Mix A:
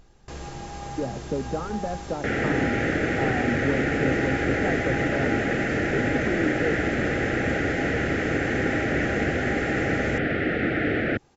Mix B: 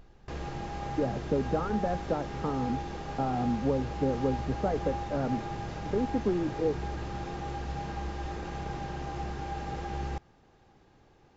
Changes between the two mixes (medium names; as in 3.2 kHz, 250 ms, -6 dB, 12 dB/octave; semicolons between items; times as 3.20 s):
first sound: add distance through air 140 m; second sound: muted